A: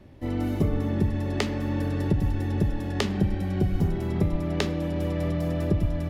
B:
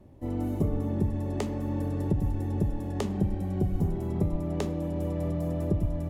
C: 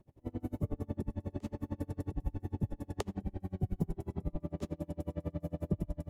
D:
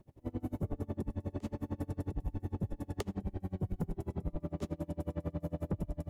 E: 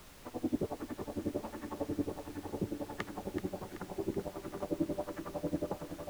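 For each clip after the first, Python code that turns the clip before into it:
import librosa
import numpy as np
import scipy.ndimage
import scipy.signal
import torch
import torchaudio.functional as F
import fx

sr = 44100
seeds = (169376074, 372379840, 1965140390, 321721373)

y1 = fx.band_shelf(x, sr, hz=2700.0, db=-9.5, octaves=2.3)
y1 = y1 * librosa.db_to_amplitude(-3.0)
y2 = y1 * 10.0 ** (-34 * (0.5 - 0.5 * np.cos(2.0 * np.pi * 11.0 * np.arange(len(y1)) / sr)) / 20.0)
y2 = y2 * librosa.db_to_amplitude(-2.5)
y3 = 10.0 ** (-31.0 / 20.0) * np.tanh(y2 / 10.0 ** (-31.0 / 20.0))
y3 = y3 * librosa.db_to_amplitude(3.0)
y4 = fx.wah_lfo(y3, sr, hz=1.4, low_hz=320.0, high_hz=1700.0, q=2.3)
y4 = fx.dmg_noise_colour(y4, sr, seeds[0], colour='pink', level_db=-65.0)
y4 = fx.echo_feedback(y4, sr, ms=380, feedback_pct=54, wet_db=-9.5)
y4 = y4 * librosa.db_to_amplitude(10.5)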